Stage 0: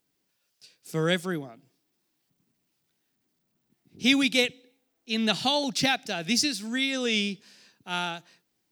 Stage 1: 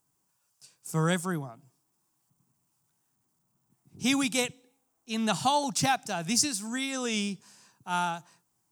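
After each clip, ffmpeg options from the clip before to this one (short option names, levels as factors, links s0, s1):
-af "equalizer=f=125:t=o:w=1:g=7,equalizer=f=250:t=o:w=1:g=-4,equalizer=f=500:t=o:w=1:g=-6,equalizer=f=1000:t=o:w=1:g=10,equalizer=f=2000:t=o:w=1:g=-7,equalizer=f=4000:t=o:w=1:g=-9,equalizer=f=8000:t=o:w=1:g=9"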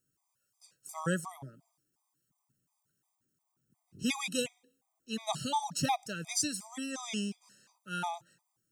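-af "afftfilt=real='re*gt(sin(2*PI*2.8*pts/sr)*(1-2*mod(floor(b*sr/1024/640),2)),0)':imag='im*gt(sin(2*PI*2.8*pts/sr)*(1-2*mod(floor(b*sr/1024/640),2)),0)':win_size=1024:overlap=0.75,volume=0.708"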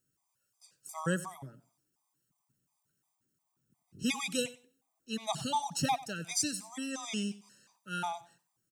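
-af "aecho=1:1:93|186:0.126|0.0201"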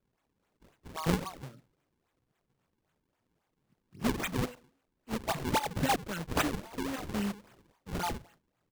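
-af "acrusher=samples=40:mix=1:aa=0.000001:lfo=1:lforange=64:lforate=3.7,volume=1.26"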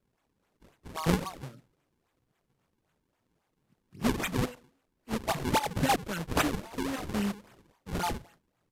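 -af "volume=1.33" -ar 32000 -c:a libvorbis -b:a 96k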